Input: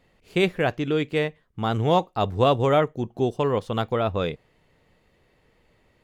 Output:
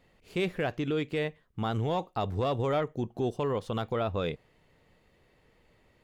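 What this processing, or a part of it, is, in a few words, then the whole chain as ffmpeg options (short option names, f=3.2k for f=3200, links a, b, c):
soft clipper into limiter: -af "asoftclip=type=tanh:threshold=-10dB,alimiter=limit=-19dB:level=0:latency=1:release=83,volume=-2dB"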